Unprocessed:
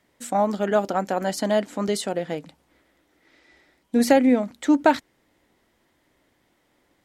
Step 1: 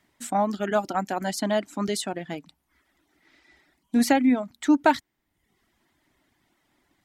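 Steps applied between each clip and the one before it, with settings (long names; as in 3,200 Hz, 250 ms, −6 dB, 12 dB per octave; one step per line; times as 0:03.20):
parametric band 500 Hz −12.5 dB 0.37 octaves
reverb reduction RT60 0.73 s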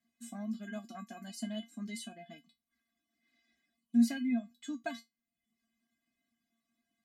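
parametric band 900 Hz −7.5 dB 1.2 octaves
tuned comb filter 230 Hz, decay 0.17 s, harmonics odd, mix 100%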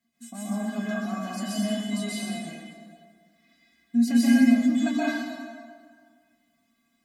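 dense smooth reverb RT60 1.8 s, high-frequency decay 0.7×, pre-delay 115 ms, DRR −9.5 dB
level +4 dB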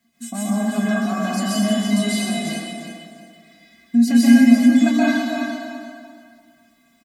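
in parallel at +1 dB: downward compressor, threshold −32 dBFS, peak gain reduction 17 dB
on the sum: repeating echo 339 ms, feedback 25%, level −7.5 dB
level +4.5 dB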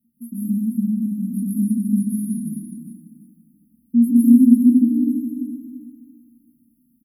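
linear-phase brick-wall band-stop 310–10,000 Hz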